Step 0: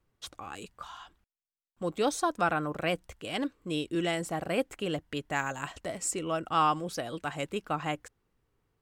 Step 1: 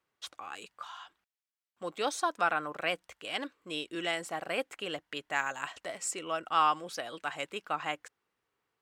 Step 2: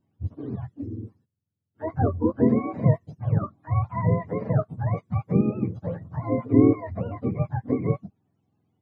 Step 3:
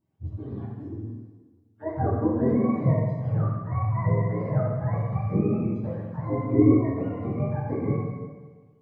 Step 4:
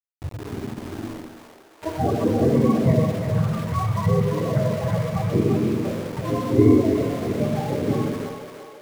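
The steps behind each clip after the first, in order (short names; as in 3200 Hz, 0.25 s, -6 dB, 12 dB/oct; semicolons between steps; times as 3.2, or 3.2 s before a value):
HPF 1300 Hz 6 dB/oct; high shelf 5200 Hz -9.5 dB; gain +4 dB
spectrum mirrored in octaves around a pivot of 580 Hz; gain +9 dB
plate-style reverb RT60 1.4 s, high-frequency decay 0.95×, DRR -4.5 dB; gain -6.5 dB
bin magnitudes rounded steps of 30 dB; sample gate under -36 dBFS; split-band echo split 430 Hz, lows 0.105 s, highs 0.341 s, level -6 dB; gain +3.5 dB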